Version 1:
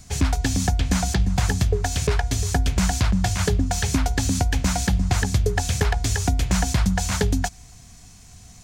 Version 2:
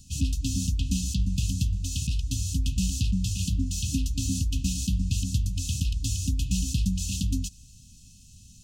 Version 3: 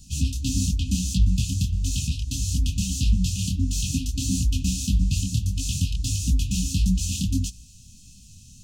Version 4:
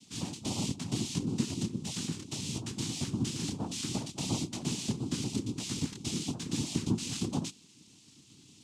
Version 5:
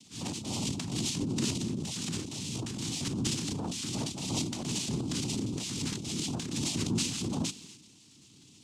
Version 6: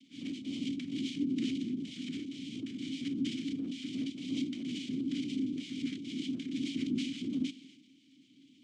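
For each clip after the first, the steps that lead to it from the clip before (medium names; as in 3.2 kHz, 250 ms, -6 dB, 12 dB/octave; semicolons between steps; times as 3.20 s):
FFT band-reject 290–2500 Hz; trim -5 dB
detune thickener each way 55 cents; trim +7 dB
noise-vocoded speech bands 4; trim -6.5 dB
transient shaper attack -5 dB, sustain +10 dB
vowel filter i; trim +6.5 dB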